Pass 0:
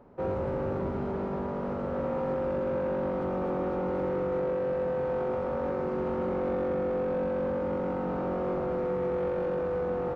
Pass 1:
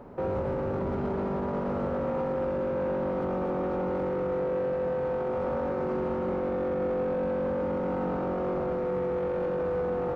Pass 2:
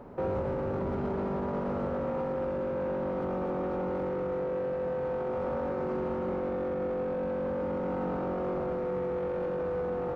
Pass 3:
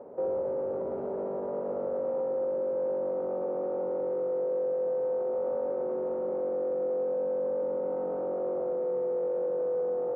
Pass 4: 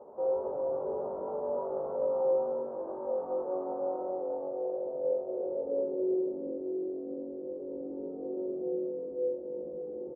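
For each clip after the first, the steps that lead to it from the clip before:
limiter -31.5 dBFS, peak gain reduction 11 dB; gain +8.5 dB
vocal rider; gain -2.5 dB
band-pass 520 Hz, Q 2.6; in parallel at +1 dB: limiter -35.5 dBFS, peak gain reduction 10 dB
low-pass sweep 1000 Hz -> 340 Hz, 3.71–6.47; loudspeakers at several distances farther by 26 m -3 dB, 95 m -5 dB; chorus voices 6, 0.36 Hz, delay 16 ms, depth 2.8 ms; gain -4 dB

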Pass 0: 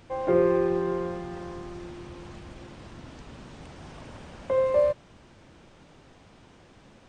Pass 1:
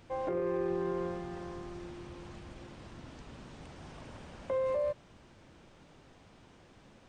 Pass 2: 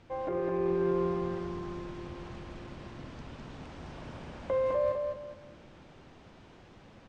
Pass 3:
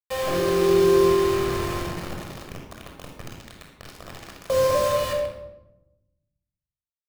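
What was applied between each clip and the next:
limiter -21 dBFS, peak gain reduction 10 dB; gain -4.5 dB
AGC gain up to 3 dB; air absorption 78 m; feedback echo 0.207 s, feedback 30%, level -4.5 dB
bit-crush 6-bit; shoebox room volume 3500 m³, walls furnished, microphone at 6 m; gain +2.5 dB

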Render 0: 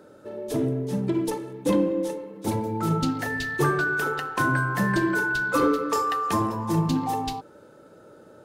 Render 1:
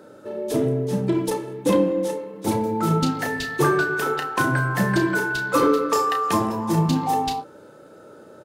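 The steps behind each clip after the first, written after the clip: low shelf 76 Hz -9 dB; doubler 32 ms -8 dB; gain +4 dB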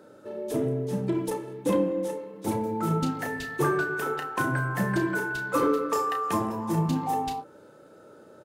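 dynamic EQ 4400 Hz, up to -6 dB, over -45 dBFS, Q 1.2; gain -5.5 dB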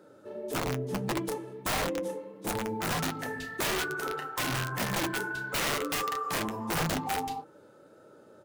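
wrapped overs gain 20.5 dB; flange 1.6 Hz, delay 5.4 ms, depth 6 ms, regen -49%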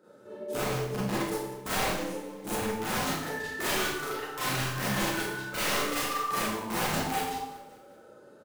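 feedback echo 0.19 s, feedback 56%, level -20 dB; Schroeder reverb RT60 0.66 s, combs from 30 ms, DRR -8.5 dB; gain -7.5 dB

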